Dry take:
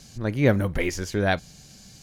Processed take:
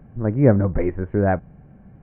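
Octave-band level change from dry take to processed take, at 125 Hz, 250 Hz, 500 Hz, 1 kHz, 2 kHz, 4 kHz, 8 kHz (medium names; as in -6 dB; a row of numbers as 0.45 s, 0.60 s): +5.5 dB, +5.5 dB, +4.5 dB, +3.0 dB, -5.5 dB, under -30 dB, under -40 dB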